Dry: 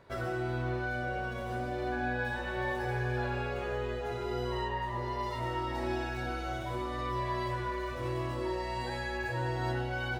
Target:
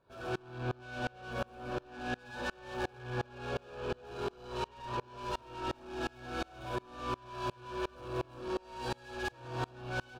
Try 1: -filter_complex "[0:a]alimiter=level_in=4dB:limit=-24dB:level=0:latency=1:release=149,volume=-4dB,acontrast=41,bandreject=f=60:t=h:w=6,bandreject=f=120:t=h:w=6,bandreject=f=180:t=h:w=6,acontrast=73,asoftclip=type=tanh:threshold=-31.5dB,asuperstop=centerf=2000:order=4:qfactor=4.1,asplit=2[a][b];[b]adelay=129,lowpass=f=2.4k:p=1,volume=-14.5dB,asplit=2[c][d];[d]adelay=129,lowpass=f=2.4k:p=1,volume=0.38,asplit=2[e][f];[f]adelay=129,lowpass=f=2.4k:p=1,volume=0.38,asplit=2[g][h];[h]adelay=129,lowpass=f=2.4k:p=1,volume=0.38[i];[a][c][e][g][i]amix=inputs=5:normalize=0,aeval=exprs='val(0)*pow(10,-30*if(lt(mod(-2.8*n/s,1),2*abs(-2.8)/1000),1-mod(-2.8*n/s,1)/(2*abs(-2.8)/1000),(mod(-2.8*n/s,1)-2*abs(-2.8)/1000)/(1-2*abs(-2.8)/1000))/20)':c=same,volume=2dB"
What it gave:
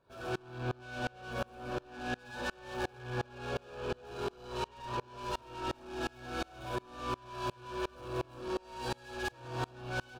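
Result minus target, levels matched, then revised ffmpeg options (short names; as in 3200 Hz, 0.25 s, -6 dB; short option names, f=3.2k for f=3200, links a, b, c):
8000 Hz band +2.5 dB
-filter_complex "[0:a]alimiter=level_in=4dB:limit=-24dB:level=0:latency=1:release=149,volume=-4dB,acontrast=41,bandreject=f=60:t=h:w=6,bandreject=f=120:t=h:w=6,bandreject=f=180:t=h:w=6,acontrast=73,asoftclip=type=tanh:threshold=-31.5dB,asuperstop=centerf=2000:order=4:qfactor=4.1,highshelf=f=6.3k:g=-5,asplit=2[a][b];[b]adelay=129,lowpass=f=2.4k:p=1,volume=-14.5dB,asplit=2[c][d];[d]adelay=129,lowpass=f=2.4k:p=1,volume=0.38,asplit=2[e][f];[f]adelay=129,lowpass=f=2.4k:p=1,volume=0.38,asplit=2[g][h];[h]adelay=129,lowpass=f=2.4k:p=1,volume=0.38[i];[a][c][e][g][i]amix=inputs=5:normalize=0,aeval=exprs='val(0)*pow(10,-30*if(lt(mod(-2.8*n/s,1),2*abs(-2.8)/1000),1-mod(-2.8*n/s,1)/(2*abs(-2.8)/1000),(mod(-2.8*n/s,1)-2*abs(-2.8)/1000)/(1-2*abs(-2.8)/1000))/20)':c=same,volume=2dB"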